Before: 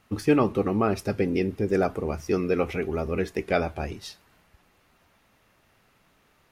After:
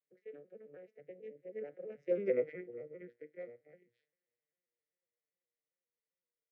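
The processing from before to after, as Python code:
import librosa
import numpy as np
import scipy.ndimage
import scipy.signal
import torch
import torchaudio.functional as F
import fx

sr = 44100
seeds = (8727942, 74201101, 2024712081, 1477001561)

y = fx.vocoder_arp(x, sr, chord='major triad', root=48, every_ms=120)
y = fx.doppler_pass(y, sr, speed_mps=34, closest_m=5.3, pass_at_s=2.27)
y = fx.double_bandpass(y, sr, hz=1000.0, octaves=2.0)
y = F.gain(torch.from_numpy(y), 4.0).numpy()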